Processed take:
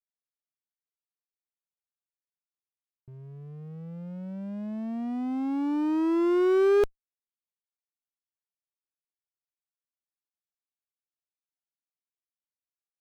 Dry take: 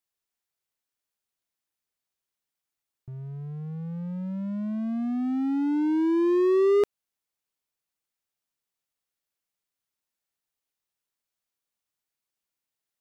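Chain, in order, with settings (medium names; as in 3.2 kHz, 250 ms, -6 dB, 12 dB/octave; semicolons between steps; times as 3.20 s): power-law waveshaper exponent 1.4; sliding maximum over 17 samples; trim +1 dB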